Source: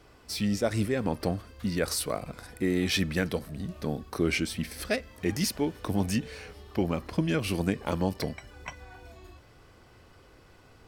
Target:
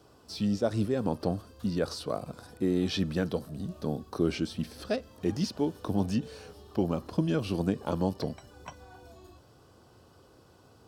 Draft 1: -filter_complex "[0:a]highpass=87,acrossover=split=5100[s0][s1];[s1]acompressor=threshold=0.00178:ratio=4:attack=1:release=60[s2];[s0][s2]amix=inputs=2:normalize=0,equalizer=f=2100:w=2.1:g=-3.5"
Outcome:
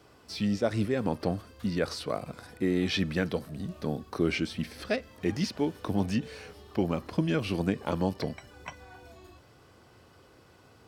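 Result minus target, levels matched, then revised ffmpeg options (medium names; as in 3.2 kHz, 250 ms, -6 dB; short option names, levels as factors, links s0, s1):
2 kHz band +6.5 dB
-filter_complex "[0:a]highpass=87,acrossover=split=5100[s0][s1];[s1]acompressor=threshold=0.00178:ratio=4:attack=1:release=60[s2];[s0][s2]amix=inputs=2:normalize=0,equalizer=f=2100:w=2.1:g=-15.5"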